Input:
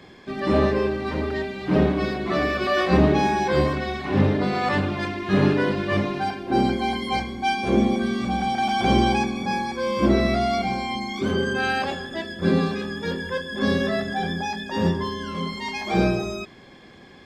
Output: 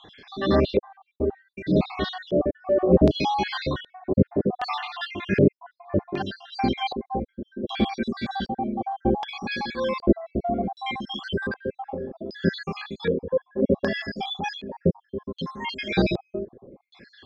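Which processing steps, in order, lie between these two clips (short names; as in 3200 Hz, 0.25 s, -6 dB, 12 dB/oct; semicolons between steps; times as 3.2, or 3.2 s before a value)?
random spectral dropouts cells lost 62%; LFO low-pass square 0.65 Hz 500–3900 Hz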